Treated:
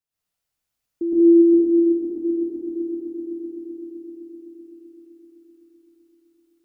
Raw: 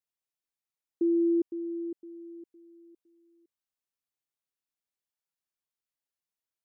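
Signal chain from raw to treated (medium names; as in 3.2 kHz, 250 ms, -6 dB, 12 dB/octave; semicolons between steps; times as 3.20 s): bass shelf 160 Hz +7.5 dB; echo with a slow build-up 128 ms, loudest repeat 5, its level -10 dB; plate-style reverb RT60 1.5 s, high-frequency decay 1×, pre-delay 100 ms, DRR -10 dB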